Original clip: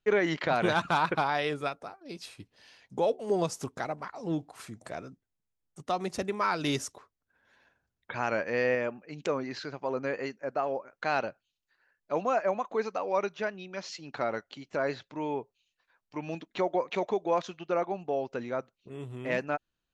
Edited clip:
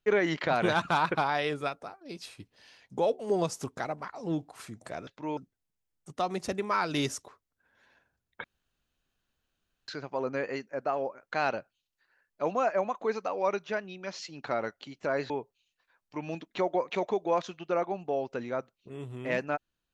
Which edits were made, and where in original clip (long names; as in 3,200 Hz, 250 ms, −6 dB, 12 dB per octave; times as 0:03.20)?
0:08.14–0:09.58: fill with room tone
0:15.00–0:15.30: move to 0:05.07